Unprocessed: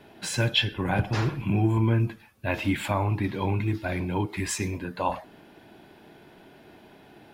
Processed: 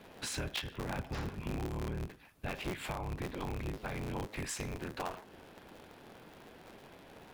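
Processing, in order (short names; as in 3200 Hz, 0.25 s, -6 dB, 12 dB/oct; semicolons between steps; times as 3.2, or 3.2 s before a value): cycle switcher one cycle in 3, inverted; compressor 4:1, threshold -34 dBFS, peak gain reduction 14 dB; gain -3 dB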